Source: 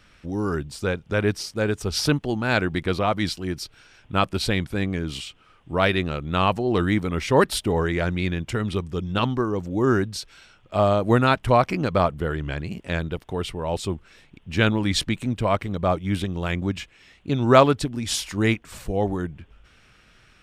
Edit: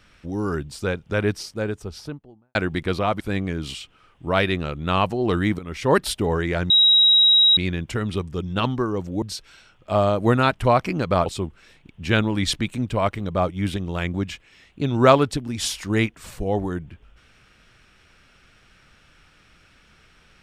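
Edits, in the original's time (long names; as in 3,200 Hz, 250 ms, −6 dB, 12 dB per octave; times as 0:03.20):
0:01.19–0:02.55: fade out and dull
0:03.20–0:04.66: remove
0:07.05–0:07.42: fade in, from −13 dB
0:08.16: insert tone 3,830 Hz −11.5 dBFS 0.87 s
0:09.81–0:10.06: remove
0:12.10–0:13.74: remove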